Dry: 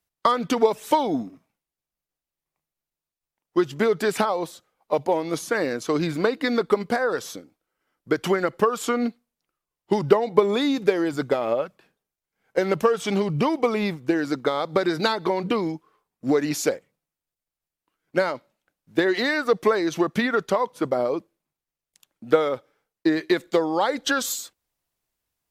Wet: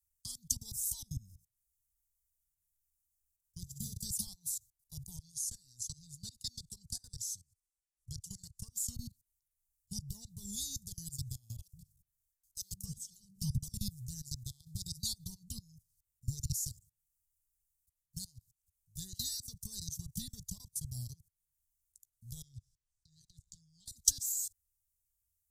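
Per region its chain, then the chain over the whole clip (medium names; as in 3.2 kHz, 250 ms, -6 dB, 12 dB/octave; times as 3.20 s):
3.60–4.06 s: peaking EQ 1.5 kHz -5.5 dB 2.7 oct + flutter echo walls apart 11 m, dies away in 0.64 s
5.16–8.72 s: phaser 1 Hz, delay 3.4 ms, feedback 34% + low-pass 9.2 kHz + bass shelf 290 Hz -8.5 dB
11.59–13.72 s: hum notches 50/100/150/200/250/300 Hz + bands offset in time highs, lows 140 ms, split 340 Hz
22.42–23.86 s: low-pass 5.8 kHz + high-order bell 700 Hz -14.5 dB 1.3 oct + compression, threshold -32 dBFS
whole clip: level held to a coarse grid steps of 24 dB; inverse Chebyshev band-stop 300–2400 Hz, stop band 60 dB; trim +15 dB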